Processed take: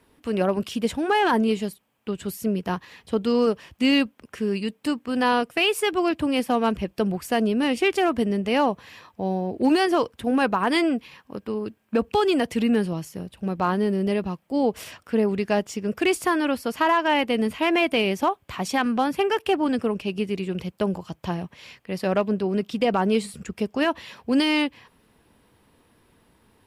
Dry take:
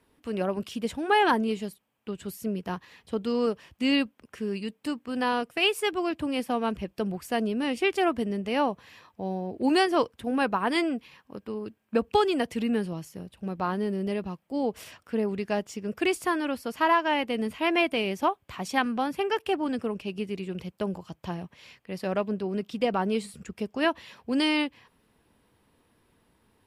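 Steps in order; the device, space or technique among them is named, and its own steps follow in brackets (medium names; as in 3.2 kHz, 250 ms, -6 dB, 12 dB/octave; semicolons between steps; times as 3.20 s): limiter into clipper (peak limiter -17.5 dBFS, peak gain reduction 7 dB; hard clipper -18.5 dBFS, distortion -35 dB); trim +6 dB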